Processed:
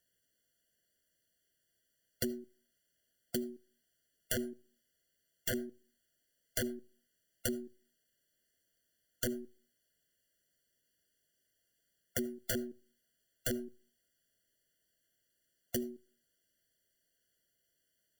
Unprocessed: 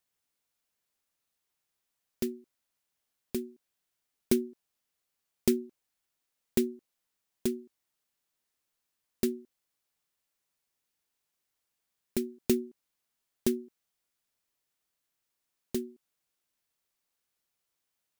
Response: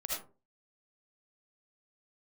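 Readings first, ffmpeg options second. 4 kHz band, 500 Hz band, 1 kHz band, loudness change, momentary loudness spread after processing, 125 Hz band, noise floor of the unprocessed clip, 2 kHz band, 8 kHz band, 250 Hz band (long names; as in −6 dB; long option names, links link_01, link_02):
+0.5 dB, −7.0 dB, 0.0 dB, −6.0 dB, 13 LU, −2.0 dB, −84 dBFS, +5.5 dB, 0.0 dB, −8.0 dB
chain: -filter_complex "[0:a]acontrast=26,aeval=exprs='(mod(7.5*val(0)+1,2)-1)/7.5':channel_layout=same,aeval=exprs='0.133*(cos(1*acos(clip(val(0)/0.133,-1,1)))-cos(1*PI/2))+0.00422*(cos(4*acos(clip(val(0)/0.133,-1,1)))-cos(4*PI/2))+0.00335*(cos(5*acos(clip(val(0)/0.133,-1,1)))-cos(5*PI/2))+0.000841*(cos(7*acos(clip(val(0)/0.133,-1,1)))-cos(7*PI/2))':channel_layout=same,acompressor=threshold=-31dB:ratio=6,asplit=2[link_01][link_02];[1:a]atrim=start_sample=2205,lowshelf=frequency=230:gain=4[link_03];[link_02][link_03]afir=irnorm=-1:irlink=0,volume=-21.5dB[link_04];[link_01][link_04]amix=inputs=2:normalize=0,afftfilt=real='re*eq(mod(floor(b*sr/1024/690),2),0)':imag='im*eq(mod(floor(b*sr/1024/690),2),0)':win_size=1024:overlap=0.75"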